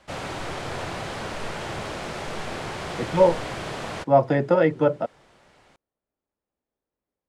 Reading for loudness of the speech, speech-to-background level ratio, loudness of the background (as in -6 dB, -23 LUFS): -21.0 LUFS, 11.5 dB, -32.5 LUFS